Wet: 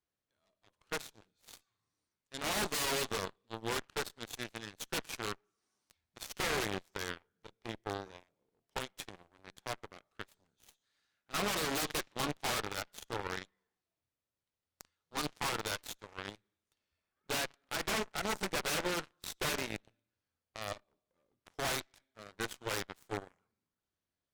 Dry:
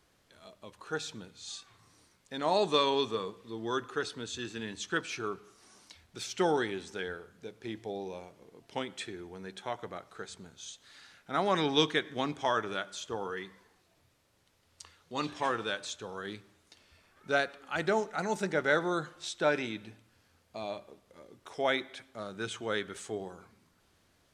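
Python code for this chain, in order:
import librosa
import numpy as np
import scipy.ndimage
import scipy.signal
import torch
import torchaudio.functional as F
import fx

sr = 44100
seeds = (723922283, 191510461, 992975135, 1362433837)

y = fx.rev_schroeder(x, sr, rt60_s=0.93, comb_ms=29, drr_db=19.0)
y = 10.0 ** (-29.0 / 20.0) * (np.abs((y / 10.0 ** (-29.0 / 20.0) + 3.0) % 4.0 - 2.0) - 1.0)
y = fx.cheby_harmonics(y, sr, harmonics=(2, 3, 4), levels_db=(-6, -9, -20), full_scale_db=-29.0)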